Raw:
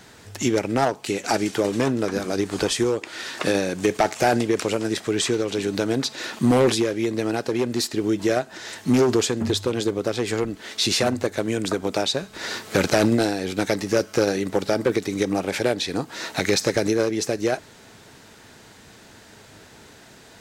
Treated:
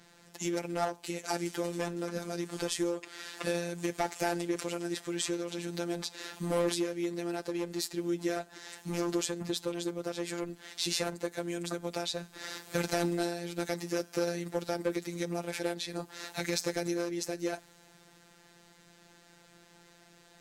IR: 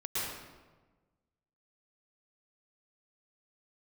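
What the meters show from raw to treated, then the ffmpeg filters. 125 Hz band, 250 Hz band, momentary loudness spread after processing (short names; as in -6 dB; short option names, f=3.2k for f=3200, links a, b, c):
-12.0 dB, -11.5 dB, 7 LU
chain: -af "afftfilt=real='hypot(re,im)*cos(PI*b)':imag='0':win_size=1024:overlap=0.75,adynamicequalizer=threshold=0.00501:dfrequency=7800:dqfactor=0.7:tfrequency=7800:tqfactor=0.7:attack=5:release=100:ratio=0.375:range=3:mode=boostabove:tftype=highshelf,volume=-8dB"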